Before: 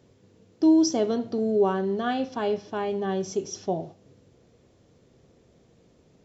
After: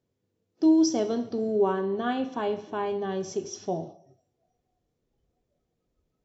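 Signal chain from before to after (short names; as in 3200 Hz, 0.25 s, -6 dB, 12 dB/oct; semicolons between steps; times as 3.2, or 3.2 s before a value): 1.48–2.86 thirty-one-band EQ 315 Hz +6 dB, 1000 Hz +4 dB, 5000 Hz -10 dB; two-slope reverb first 0.76 s, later 3.4 s, from -26 dB, DRR 11.5 dB; spectral noise reduction 18 dB; gain -2.5 dB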